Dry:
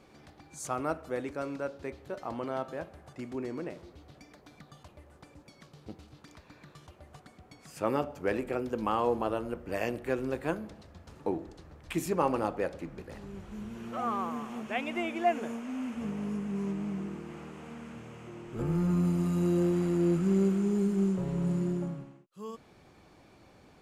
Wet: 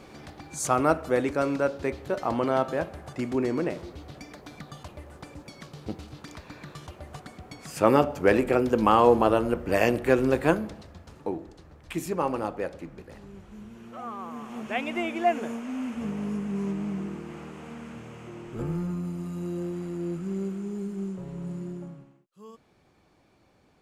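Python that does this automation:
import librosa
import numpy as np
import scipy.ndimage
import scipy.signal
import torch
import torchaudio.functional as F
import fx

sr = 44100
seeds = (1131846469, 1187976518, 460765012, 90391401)

y = fx.gain(x, sr, db=fx.line((10.49, 10.0), (11.3, 0.5), (12.77, 0.5), (14.16, -5.5), (14.66, 3.5), (18.48, 3.5), (19.01, -5.5)))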